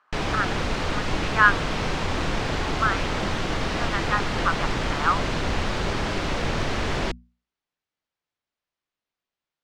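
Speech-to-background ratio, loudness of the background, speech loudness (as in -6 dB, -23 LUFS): 1.5 dB, -27.0 LUFS, -25.5 LUFS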